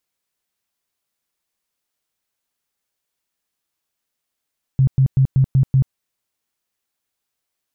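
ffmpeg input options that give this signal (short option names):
-f lavfi -i "aevalsrc='0.316*sin(2*PI*133*mod(t,0.19))*lt(mod(t,0.19),11/133)':d=1.14:s=44100"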